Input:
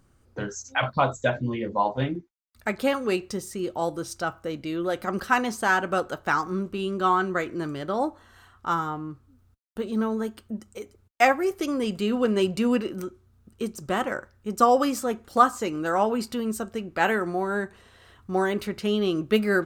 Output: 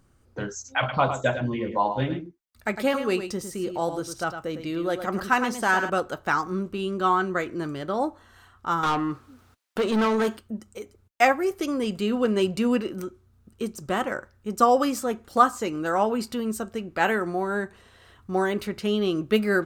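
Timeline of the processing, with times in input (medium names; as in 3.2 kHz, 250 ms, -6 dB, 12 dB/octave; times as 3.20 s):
0.78–5.90 s: delay 106 ms -9 dB
8.83–10.37 s: overdrive pedal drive 24 dB, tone 5.1 kHz, clips at -15 dBFS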